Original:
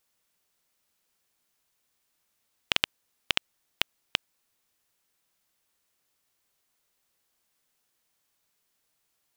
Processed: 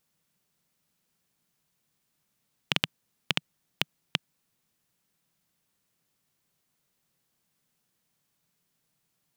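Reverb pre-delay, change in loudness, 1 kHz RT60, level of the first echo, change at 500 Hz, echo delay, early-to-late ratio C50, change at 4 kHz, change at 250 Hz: no reverb, -1.0 dB, no reverb, no echo, +0.5 dB, no echo, no reverb, -1.5 dB, +7.0 dB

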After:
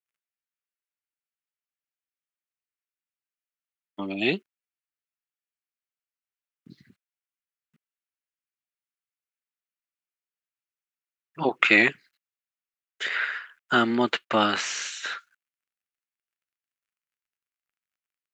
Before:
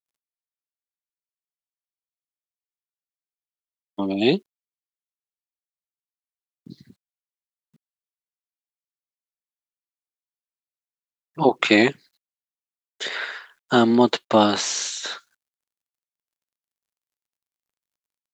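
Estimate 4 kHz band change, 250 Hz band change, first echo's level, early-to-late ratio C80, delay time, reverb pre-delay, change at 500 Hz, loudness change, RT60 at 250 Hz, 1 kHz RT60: -3.5 dB, -7.5 dB, no echo, no reverb, no echo, no reverb, -7.5 dB, -3.5 dB, no reverb, no reverb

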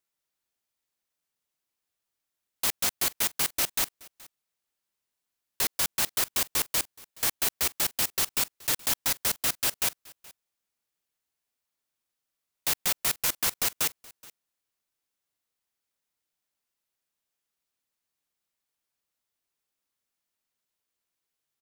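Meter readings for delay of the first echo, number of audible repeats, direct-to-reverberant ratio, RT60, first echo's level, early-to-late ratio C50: 424 ms, 1, no reverb, no reverb, -23.0 dB, no reverb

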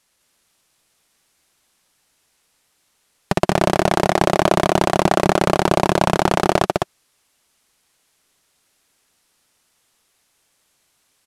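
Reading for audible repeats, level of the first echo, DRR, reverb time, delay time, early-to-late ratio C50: 1, -3.0 dB, no reverb, no reverb, 205 ms, no reverb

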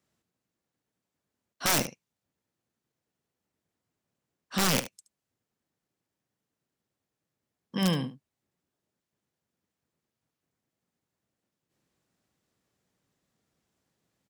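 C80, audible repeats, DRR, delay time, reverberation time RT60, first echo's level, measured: no reverb, 1, no reverb, 73 ms, no reverb, -13.5 dB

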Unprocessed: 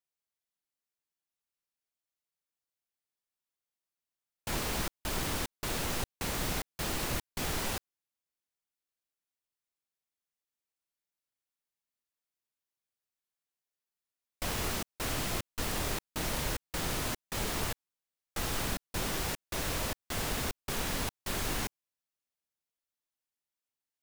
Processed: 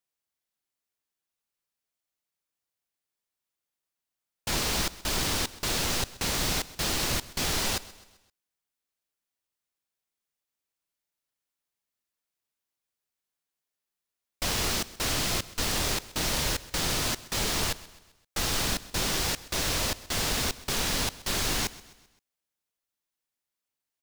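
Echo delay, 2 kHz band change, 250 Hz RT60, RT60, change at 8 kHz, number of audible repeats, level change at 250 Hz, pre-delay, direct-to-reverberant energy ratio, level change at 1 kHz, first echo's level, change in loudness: 130 ms, +5.5 dB, no reverb, no reverb, +8.0 dB, 3, +3.5 dB, no reverb, no reverb, +4.0 dB, -19.0 dB, +6.5 dB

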